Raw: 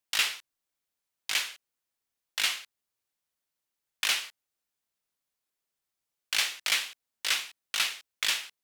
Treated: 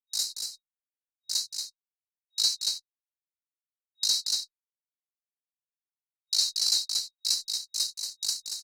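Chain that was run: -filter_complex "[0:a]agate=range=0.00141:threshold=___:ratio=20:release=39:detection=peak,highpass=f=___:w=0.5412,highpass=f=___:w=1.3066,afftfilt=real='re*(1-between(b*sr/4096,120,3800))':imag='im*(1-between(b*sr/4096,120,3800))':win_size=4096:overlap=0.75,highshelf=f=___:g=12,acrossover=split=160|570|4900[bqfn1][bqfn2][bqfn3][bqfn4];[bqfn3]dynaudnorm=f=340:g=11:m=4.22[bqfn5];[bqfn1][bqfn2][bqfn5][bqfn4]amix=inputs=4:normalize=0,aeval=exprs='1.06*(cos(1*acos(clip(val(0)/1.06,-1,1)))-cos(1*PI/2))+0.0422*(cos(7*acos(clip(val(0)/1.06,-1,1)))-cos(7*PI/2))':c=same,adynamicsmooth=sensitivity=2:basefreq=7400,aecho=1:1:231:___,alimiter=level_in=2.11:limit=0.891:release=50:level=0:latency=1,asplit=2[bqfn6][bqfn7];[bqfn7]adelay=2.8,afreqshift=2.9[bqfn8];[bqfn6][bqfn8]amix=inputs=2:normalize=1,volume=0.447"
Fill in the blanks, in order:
0.0112, 80, 80, 2700, 0.531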